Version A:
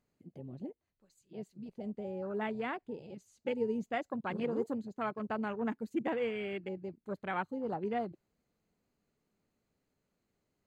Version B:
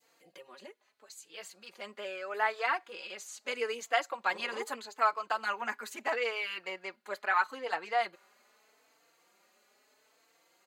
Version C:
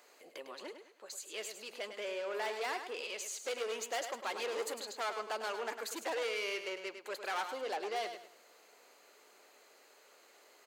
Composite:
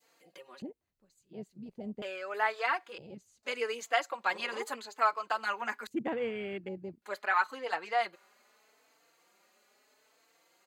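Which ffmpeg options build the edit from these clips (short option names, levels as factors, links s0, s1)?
-filter_complex "[0:a]asplit=3[s0][s1][s2];[1:a]asplit=4[s3][s4][s5][s6];[s3]atrim=end=0.622[s7];[s0]atrim=start=0.618:end=2.022[s8];[s4]atrim=start=2.018:end=2.982[s9];[s1]atrim=start=2.978:end=3.432[s10];[s5]atrim=start=3.428:end=5.872[s11];[s2]atrim=start=5.868:end=7.022[s12];[s6]atrim=start=7.018[s13];[s7][s8]acrossfade=d=0.004:c1=hsin:c2=hsin[s14];[s14][s9]acrossfade=d=0.004:c1=hsin:c2=hsin[s15];[s15][s10]acrossfade=d=0.004:c1=hsin:c2=hsin[s16];[s16][s11]acrossfade=d=0.004:c1=hsin:c2=hsin[s17];[s17][s12]acrossfade=d=0.004:c1=hsin:c2=hsin[s18];[s18][s13]acrossfade=d=0.004:c1=hsin:c2=hsin"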